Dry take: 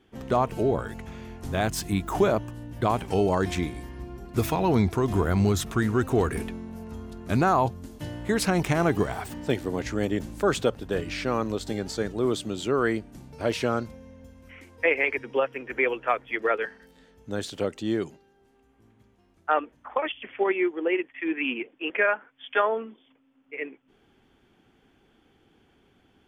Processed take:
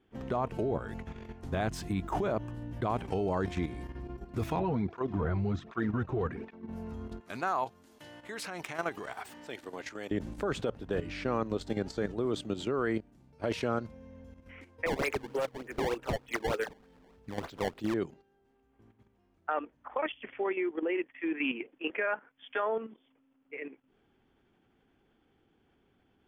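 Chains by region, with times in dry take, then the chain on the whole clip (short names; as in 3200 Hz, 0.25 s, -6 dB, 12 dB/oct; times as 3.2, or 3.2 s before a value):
4.59–6.69 air absorption 170 m + tape flanging out of phase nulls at 1.3 Hz, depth 4.5 ms
7.2–10.11 HPF 1200 Hz 6 dB/oct + high shelf 8900 Hz +5.5 dB
13–13.68 gate -35 dBFS, range -11 dB + bell 14000 Hz +4 dB 1.9 oct + sustainer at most 120 dB/s
14.86–17.94 decimation with a swept rate 20×, swing 160% 3.3 Hz + hard clip -21 dBFS
whole clip: LPF 2700 Hz 6 dB/oct; limiter -17 dBFS; level quantiser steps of 10 dB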